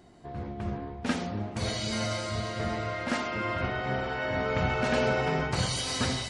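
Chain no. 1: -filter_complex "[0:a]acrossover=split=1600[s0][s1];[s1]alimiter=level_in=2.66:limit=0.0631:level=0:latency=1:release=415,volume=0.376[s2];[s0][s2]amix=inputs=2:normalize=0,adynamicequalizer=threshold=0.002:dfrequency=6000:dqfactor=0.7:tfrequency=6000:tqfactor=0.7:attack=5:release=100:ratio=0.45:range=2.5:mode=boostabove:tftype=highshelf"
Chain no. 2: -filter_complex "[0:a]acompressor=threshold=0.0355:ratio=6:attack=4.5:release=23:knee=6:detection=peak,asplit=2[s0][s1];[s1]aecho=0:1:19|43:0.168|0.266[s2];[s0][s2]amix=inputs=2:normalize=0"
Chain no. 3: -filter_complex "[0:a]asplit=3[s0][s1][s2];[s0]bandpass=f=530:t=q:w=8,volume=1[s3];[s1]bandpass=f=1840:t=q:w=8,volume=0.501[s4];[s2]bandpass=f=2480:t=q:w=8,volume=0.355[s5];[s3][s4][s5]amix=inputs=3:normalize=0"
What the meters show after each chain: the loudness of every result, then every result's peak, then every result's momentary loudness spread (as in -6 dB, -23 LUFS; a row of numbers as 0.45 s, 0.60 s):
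-31.0 LUFS, -32.0 LUFS, -41.0 LUFS; -15.0 dBFS, -17.5 dBFS, -23.0 dBFS; 8 LU, 5 LU, 16 LU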